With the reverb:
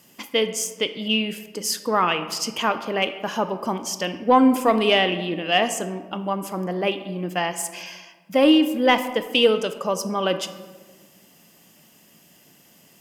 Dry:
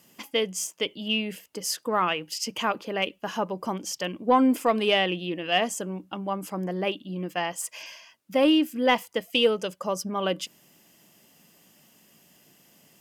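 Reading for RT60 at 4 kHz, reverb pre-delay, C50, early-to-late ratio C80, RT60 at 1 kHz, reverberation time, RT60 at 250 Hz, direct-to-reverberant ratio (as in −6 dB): 0.75 s, 17 ms, 11.0 dB, 13.0 dB, 1.3 s, 1.4 s, 1.8 s, 9.5 dB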